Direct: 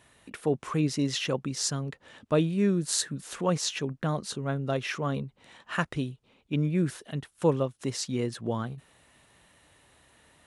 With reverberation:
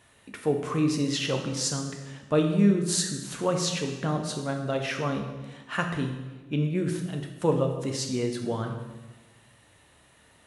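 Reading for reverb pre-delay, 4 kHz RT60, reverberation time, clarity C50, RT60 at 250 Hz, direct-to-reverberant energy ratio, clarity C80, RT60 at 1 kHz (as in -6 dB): 6 ms, 1.1 s, 1.2 s, 6.5 dB, 1.4 s, 3.0 dB, 8.5 dB, 1.1 s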